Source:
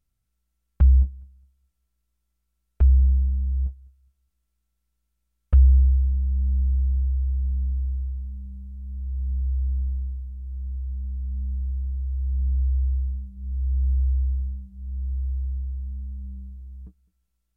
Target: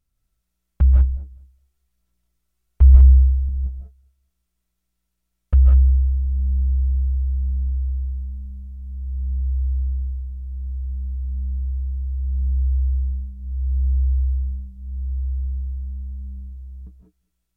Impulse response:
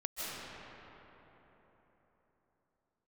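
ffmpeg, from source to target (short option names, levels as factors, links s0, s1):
-filter_complex "[0:a]asettb=1/sr,asplit=3[s0][s1][s2];[s0]atrim=end=1.174[s3];[s1]atrim=start=1.17:end=3.49,asetpts=PTS-STARTPTS,afade=t=in:d=0.004:c=qsin,afade=t=out:st=2.316:d=0.004:c=qsin,aphaser=in_gain=1:out_gain=1:delay=2.8:decay=0.48:speed=1.1:type=sinusoidal[s4];[s2]atrim=start=3.486[s5];[s3][s4]acrossfade=d=0.004:c1=hsin:c2=qsin[s6];[s6][s5]acrossfade=d=0.004:c1=qsin:c2=hsin[s7];[1:a]atrim=start_sample=2205,afade=t=out:st=0.25:d=0.01,atrim=end_sample=11466[s8];[s7][s8]afir=irnorm=-1:irlink=0,volume=1.68"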